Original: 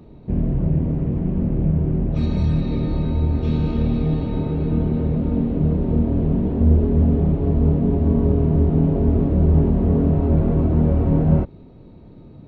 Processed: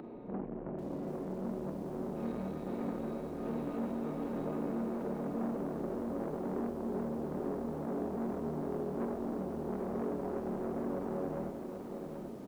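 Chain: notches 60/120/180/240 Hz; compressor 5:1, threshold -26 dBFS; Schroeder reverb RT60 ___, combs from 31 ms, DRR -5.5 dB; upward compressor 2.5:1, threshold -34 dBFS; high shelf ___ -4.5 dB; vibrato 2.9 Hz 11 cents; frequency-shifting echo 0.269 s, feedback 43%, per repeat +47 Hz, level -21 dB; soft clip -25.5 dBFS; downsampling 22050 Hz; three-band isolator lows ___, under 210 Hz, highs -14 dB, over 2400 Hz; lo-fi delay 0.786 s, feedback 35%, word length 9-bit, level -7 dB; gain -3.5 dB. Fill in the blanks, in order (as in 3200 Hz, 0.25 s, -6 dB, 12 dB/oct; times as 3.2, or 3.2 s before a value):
0.36 s, 2100 Hz, -22 dB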